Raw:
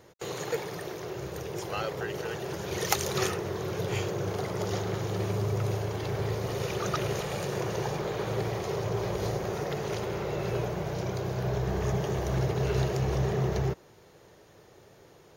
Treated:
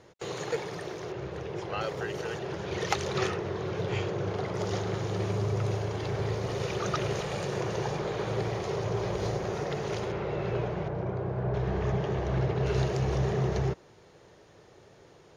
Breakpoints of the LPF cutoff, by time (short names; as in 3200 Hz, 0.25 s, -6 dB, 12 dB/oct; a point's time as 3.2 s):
6700 Hz
from 1.12 s 3500 Hz
from 1.81 s 8200 Hz
from 2.39 s 4200 Hz
from 4.54 s 6900 Hz
from 10.12 s 3300 Hz
from 10.88 s 1500 Hz
from 11.54 s 3400 Hz
from 12.66 s 7000 Hz